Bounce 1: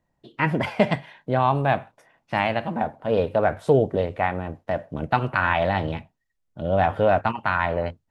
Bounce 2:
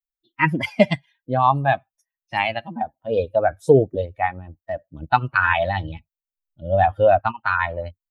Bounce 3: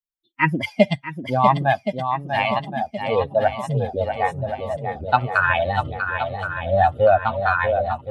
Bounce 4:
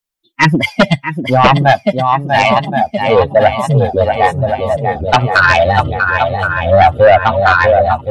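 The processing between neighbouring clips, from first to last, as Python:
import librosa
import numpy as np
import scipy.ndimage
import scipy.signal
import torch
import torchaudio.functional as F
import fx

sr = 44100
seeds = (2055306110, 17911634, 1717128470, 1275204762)

y1 = fx.bin_expand(x, sr, power=2.0)
y1 = fx.low_shelf(y1, sr, hz=340.0, db=-3.0)
y1 = F.gain(torch.from_numpy(y1), 8.0).numpy()
y2 = fx.spec_box(y1, sr, start_s=3.48, length_s=0.46, low_hz=250.0, high_hz=5200.0, gain_db=-27)
y2 = fx.echo_swing(y2, sr, ms=1072, ratio=1.5, feedback_pct=50, wet_db=-6.5)
y2 = fx.noise_reduce_blind(y2, sr, reduce_db=7)
y3 = fx.fold_sine(y2, sr, drive_db=9, ceiling_db=-1.0)
y3 = F.gain(torch.from_numpy(y3), -1.0).numpy()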